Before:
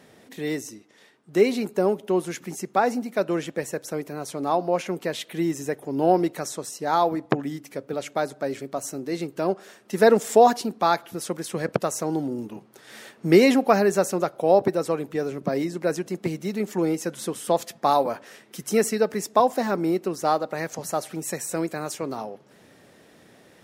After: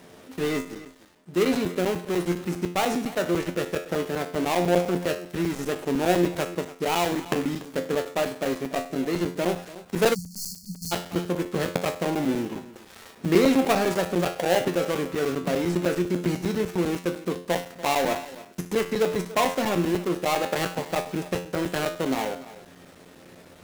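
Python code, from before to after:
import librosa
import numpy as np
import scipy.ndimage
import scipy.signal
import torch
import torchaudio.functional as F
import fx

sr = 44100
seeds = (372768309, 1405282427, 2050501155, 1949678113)

p1 = fx.dead_time(x, sr, dead_ms=0.26)
p2 = fx.over_compress(p1, sr, threshold_db=-29.0, ratio=-1.0)
p3 = p1 + (p2 * 10.0 ** (1.0 / 20.0))
p4 = fx.comb_fb(p3, sr, f0_hz=88.0, decay_s=0.45, harmonics='all', damping=0.0, mix_pct=80)
p5 = p4 + fx.echo_single(p4, sr, ms=289, db=-17.0, dry=0)
p6 = fx.spec_erase(p5, sr, start_s=10.14, length_s=0.78, low_hz=210.0, high_hz=4200.0)
p7 = fx.buffer_crackle(p6, sr, first_s=0.65, period_s=0.1, block=256, kind='zero')
y = p7 * 10.0 ** (4.5 / 20.0)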